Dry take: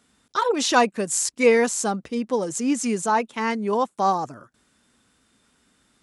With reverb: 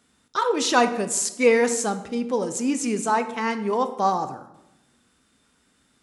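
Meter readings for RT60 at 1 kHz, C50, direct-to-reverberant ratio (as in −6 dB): 0.85 s, 12.0 dB, 9.0 dB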